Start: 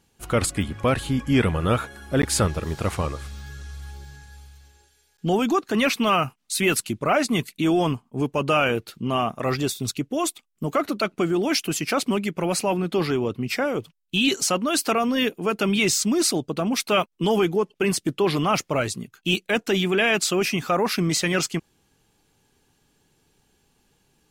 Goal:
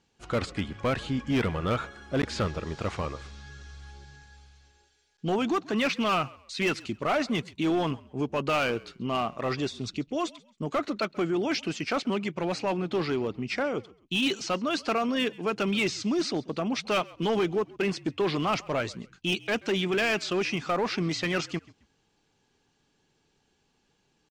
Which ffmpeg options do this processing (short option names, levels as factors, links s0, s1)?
-filter_complex "[0:a]acrossover=split=4700[s0][s1];[s1]acompressor=threshold=0.0158:ratio=4:attack=1:release=60[s2];[s0][s2]amix=inputs=2:normalize=0,lowpass=f=6600:w=0.5412,lowpass=f=6600:w=1.3066,lowshelf=f=120:g=-6.5,volume=7.08,asoftclip=hard,volume=0.141,atempo=1,asplit=3[s3][s4][s5];[s4]adelay=134,afreqshift=-51,volume=0.075[s6];[s5]adelay=268,afreqshift=-102,volume=0.0232[s7];[s3][s6][s7]amix=inputs=3:normalize=0,volume=0.631"